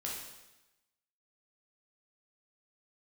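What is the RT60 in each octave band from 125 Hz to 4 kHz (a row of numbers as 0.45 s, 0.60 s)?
1.0 s, 1.0 s, 0.95 s, 1.0 s, 1.0 s, 1.0 s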